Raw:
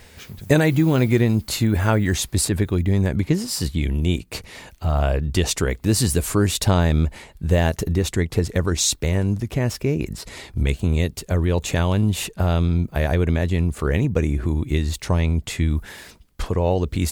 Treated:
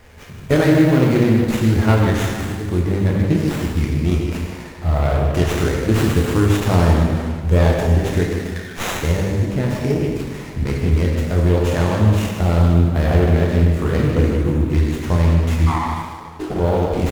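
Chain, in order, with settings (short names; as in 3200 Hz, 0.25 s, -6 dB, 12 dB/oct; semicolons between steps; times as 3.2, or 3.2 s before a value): block floating point 7-bit; 2.24–2.68 compressor, threshold -26 dBFS, peak gain reduction 11 dB; 8.27–8.87 elliptic high-pass 1600 Hz; 15.66–16.58 ring modulator 1100 Hz -> 270 Hz; speakerphone echo 0.15 s, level -8 dB; plate-style reverb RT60 1.8 s, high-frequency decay 0.75×, DRR -2.5 dB; running maximum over 9 samples; gain -1 dB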